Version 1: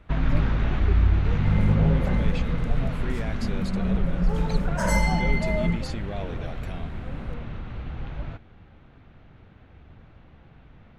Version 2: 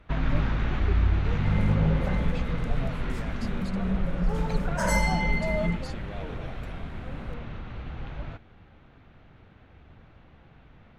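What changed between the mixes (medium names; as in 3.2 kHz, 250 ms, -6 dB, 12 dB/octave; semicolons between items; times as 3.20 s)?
speech -6.0 dB; master: add bass shelf 340 Hz -3.5 dB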